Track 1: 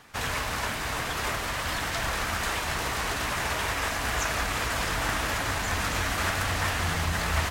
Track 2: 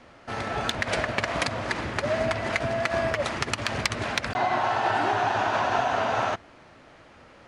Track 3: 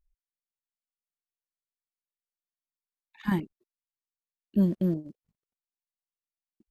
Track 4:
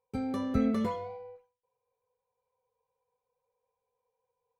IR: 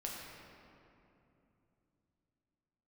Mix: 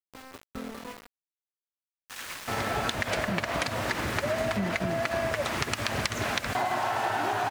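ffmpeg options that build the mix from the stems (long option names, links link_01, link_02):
-filter_complex "[0:a]highpass=1300,adelay=1950,volume=-5.5dB[link_01];[1:a]adelay=2200,volume=2dB[link_02];[2:a]equalizer=frequency=170:width=0.38:gain=5,volume=-7dB,asplit=2[link_03][link_04];[3:a]acompressor=mode=upward:threshold=-37dB:ratio=2.5,equalizer=frequency=100:width_type=o:width=1.7:gain=-12.5,volume=-6dB,asplit=2[link_05][link_06];[link_06]volume=-7.5dB[link_07];[link_04]apad=whole_len=416925[link_08];[link_01][link_08]sidechaincompress=threshold=-29dB:ratio=8:attack=16:release=773[link_09];[link_07]aecho=0:1:216:1[link_10];[link_09][link_02][link_03][link_05][link_10]amix=inputs=5:normalize=0,aeval=exprs='val(0)*gte(abs(val(0)),0.0141)':channel_layout=same,acompressor=threshold=-25dB:ratio=6"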